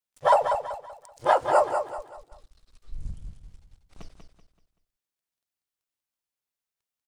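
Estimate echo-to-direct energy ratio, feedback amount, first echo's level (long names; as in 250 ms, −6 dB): −6.5 dB, 35%, −7.0 dB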